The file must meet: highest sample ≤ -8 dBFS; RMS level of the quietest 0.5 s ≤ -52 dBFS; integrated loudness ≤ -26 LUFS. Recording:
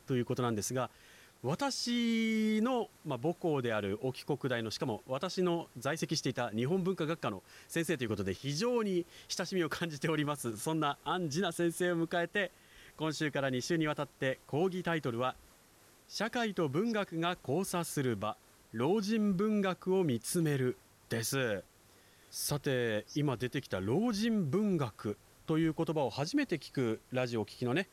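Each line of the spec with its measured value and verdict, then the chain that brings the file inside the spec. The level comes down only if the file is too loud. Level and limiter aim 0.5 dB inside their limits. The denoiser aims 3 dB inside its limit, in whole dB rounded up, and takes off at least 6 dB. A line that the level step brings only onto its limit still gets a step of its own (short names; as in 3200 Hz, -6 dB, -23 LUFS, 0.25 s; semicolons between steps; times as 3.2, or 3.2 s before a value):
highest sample -22.0 dBFS: OK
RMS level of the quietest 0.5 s -63 dBFS: OK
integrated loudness -34.5 LUFS: OK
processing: none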